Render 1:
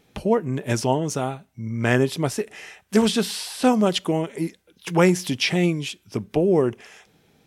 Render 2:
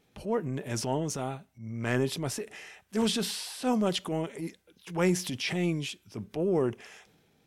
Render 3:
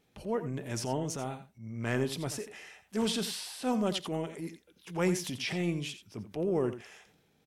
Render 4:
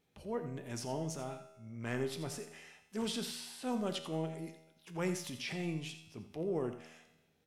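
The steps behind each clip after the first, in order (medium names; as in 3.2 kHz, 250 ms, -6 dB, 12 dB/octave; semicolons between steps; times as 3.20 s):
transient shaper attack -7 dB, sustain +4 dB; trim -7.5 dB
delay 86 ms -12 dB; trim -3 dB
feedback comb 80 Hz, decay 1 s, harmonics all, mix 70%; trim +2.5 dB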